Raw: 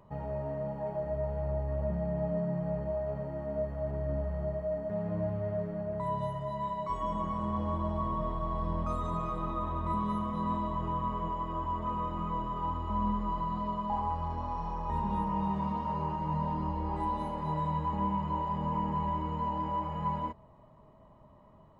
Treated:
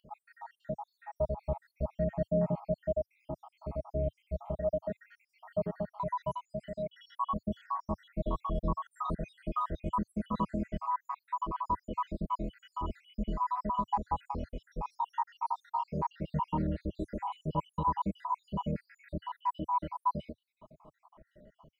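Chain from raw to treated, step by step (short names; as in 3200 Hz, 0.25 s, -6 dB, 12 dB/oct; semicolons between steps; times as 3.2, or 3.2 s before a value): random spectral dropouts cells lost 76%; bell 100 Hz -12 dB 0.53 oct; gain +5 dB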